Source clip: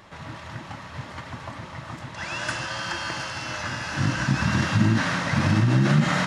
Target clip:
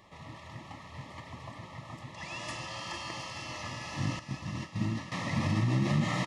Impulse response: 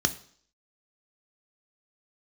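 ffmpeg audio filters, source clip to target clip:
-filter_complex "[0:a]asettb=1/sr,asplit=3[a][b][c];[a]atrim=end=4.194[d];[b]atrim=start=4.19:end=5.12,asetpts=PTS-STARTPTS,afade=t=in:d=0.004:c=qsin,afade=t=out:st=0.926:d=0.004:c=qsin,agate=range=-33dB:threshold=-14dB:ratio=3:detection=peak[e];[c]atrim=start=5.116[f];[d][e]acrossfade=d=0.004:c1=hsin:c2=qsin[g];[g][f]acrossfade=d=0.004:c1=qsin:c2=hsin,asuperstop=centerf=1500:order=12:qfactor=4,aecho=1:1:453|906|1359|1812|2265:0.335|0.147|0.0648|0.0285|0.0126,volume=-8.5dB"

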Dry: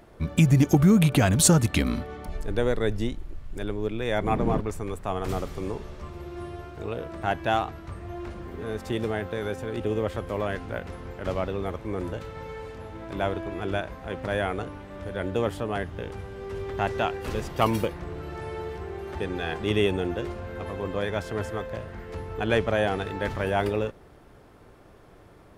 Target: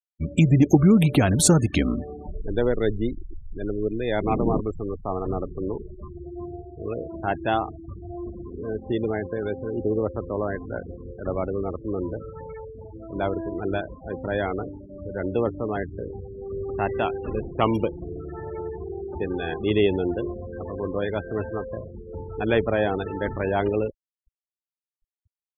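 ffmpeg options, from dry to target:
-af "adynamicequalizer=threshold=0.01:dfrequency=330:dqfactor=1.4:tfrequency=330:tqfactor=1.4:attack=5:release=100:ratio=0.375:range=2.5:mode=boostabove:tftype=bell,afftfilt=real='re*gte(hypot(re,im),0.0355)':imag='im*gte(hypot(re,im),0.0355)':win_size=1024:overlap=0.75"

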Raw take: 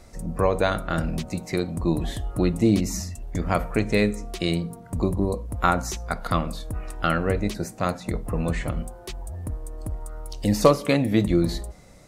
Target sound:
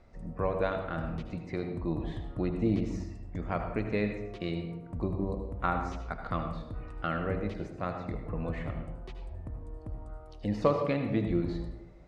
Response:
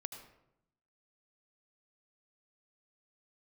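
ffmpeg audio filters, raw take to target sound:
-filter_complex "[0:a]lowpass=2.7k[a];[1:a]atrim=start_sample=2205[b];[a][b]afir=irnorm=-1:irlink=0,volume=-6dB"

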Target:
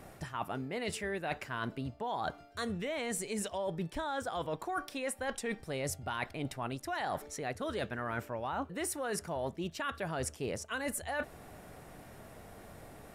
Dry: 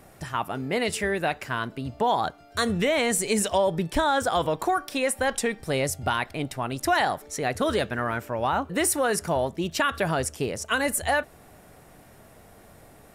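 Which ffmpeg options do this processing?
-af "highshelf=f=5.9k:g=-4.5,areverse,acompressor=threshold=-33dB:ratio=12,areverse"

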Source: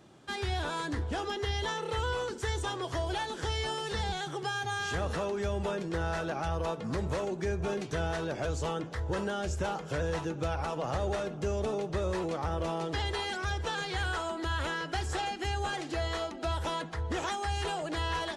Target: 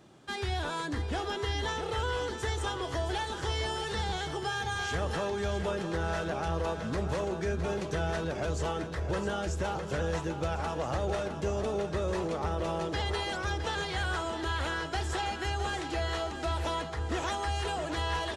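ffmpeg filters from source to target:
-af "aecho=1:1:662|1324|1986|2648|3310|3972|4634:0.335|0.194|0.113|0.0654|0.0379|0.022|0.0128"

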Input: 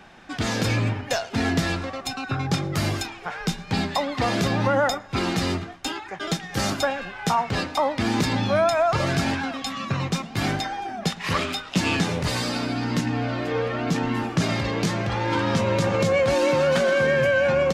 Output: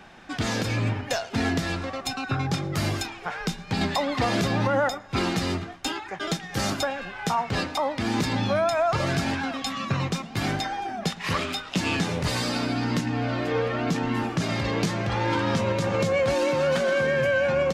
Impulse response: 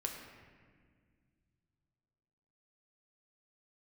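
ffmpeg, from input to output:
-filter_complex "[0:a]asettb=1/sr,asplit=3[a][b][c];[a]atrim=end=3.814[d];[b]atrim=start=3.81:end=4.89,asetpts=PTS-STARTPTS,afade=t=in:d=0.004:c=qsin,afade=t=out:st=1.076:d=0.004:c=qsin,acontrast=39[e];[c]atrim=start=4.886[f];[d][e]acrossfade=d=0.004:c1=hsin:c2=qsin[g];[g][f]acrossfade=d=0.004:c1=qsin:c2=hsin,alimiter=limit=-14.5dB:level=0:latency=1:release=354"

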